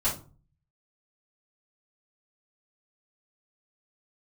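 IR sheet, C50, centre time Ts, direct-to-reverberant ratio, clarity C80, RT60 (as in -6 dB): 8.5 dB, 24 ms, -9.0 dB, 15.0 dB, 0.35 s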